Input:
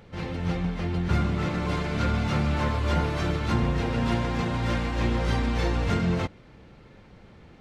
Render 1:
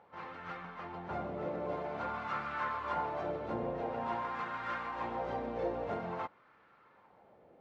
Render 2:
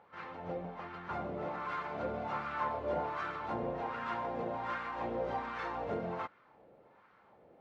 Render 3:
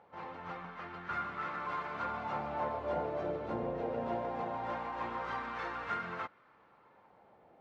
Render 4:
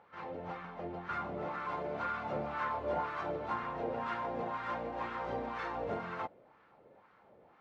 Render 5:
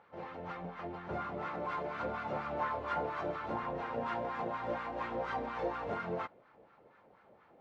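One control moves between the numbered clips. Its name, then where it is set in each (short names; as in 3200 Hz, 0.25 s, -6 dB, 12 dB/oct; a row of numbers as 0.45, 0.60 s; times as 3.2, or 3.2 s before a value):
wah, rate: 0.49, 1.3, 0.21, 2, 4.2 Hz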